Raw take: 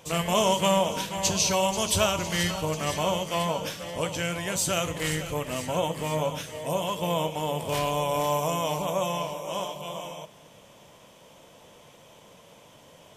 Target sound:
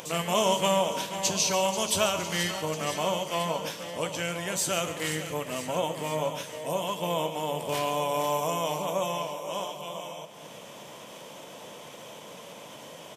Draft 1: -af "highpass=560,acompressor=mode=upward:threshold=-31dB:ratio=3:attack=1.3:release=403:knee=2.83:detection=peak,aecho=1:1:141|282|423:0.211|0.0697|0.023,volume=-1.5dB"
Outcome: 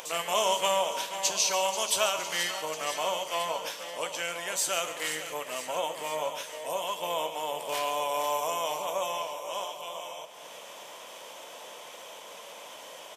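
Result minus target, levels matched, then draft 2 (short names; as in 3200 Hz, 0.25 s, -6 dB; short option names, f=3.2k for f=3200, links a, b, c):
125 Hz band -16.5 dB
-af "highpass=170,acompressor=mode=upward:threshold=-31dB:ratio=3:attack=1.3:release=403:knee=2.83:detection=peak,aecho=1:1:141|282|423:0.211|0.0697|0.023,volume=-1.5dB"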